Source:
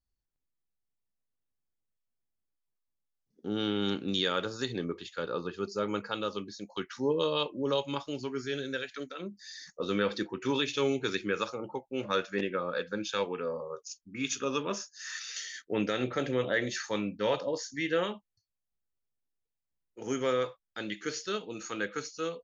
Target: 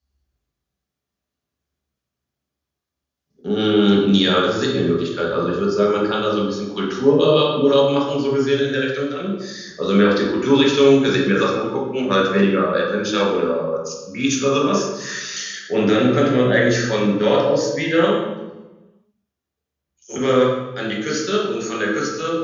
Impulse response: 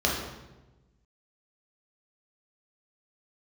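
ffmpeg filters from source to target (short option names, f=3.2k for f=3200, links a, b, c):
-filter_complex "[0:a]highpass=46,asettb=1/sr,asplit=3[a][b][c];[a]atrim=end=18.144[d];[b]atrim=start=18.14:end=20.16,asetpts=PTS-STARTPTS,afade=t=in:d=0.004:c=qsin,afade=t=out:st=2.016:d=0.004:c=qsin,acrossover=split=4500[e][f];[e]adelay=120[g];[g][f]amix=inputs=2:normalize=0,atrim=end_sample=89082[h];[c]atrim=start=20.156[i];[d][h]acrossfade=d=0.004:c1=hsin:c2=qsin[j];[j][i]acrossfade=d=0.004:c1=qsin:c2=hsin[k];[1:a]atrim=start_sample=2205[l];[k][l]afir=irnorm=-1:irlink=0"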